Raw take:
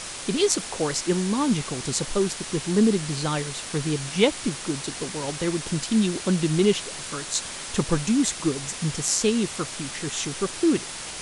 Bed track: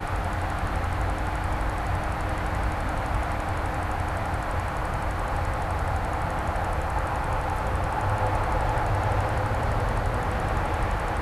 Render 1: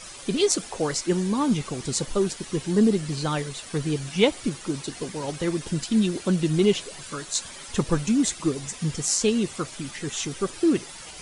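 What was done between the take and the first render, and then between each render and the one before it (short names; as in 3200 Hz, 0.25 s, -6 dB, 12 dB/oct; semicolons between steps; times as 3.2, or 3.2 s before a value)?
denoiser 11 dB, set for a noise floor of -36 dBFS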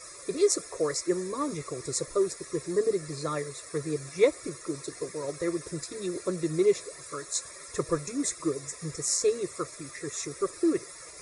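fixed phaser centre 820 Hz, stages 6; notch comb 1500 Hz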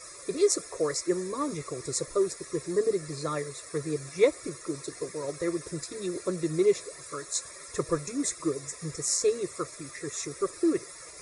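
nothing audible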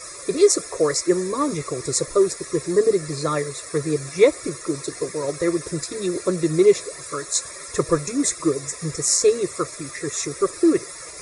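gain +8.5 dB; limiter -3 dBFS, peak gain reduction 2.5 dB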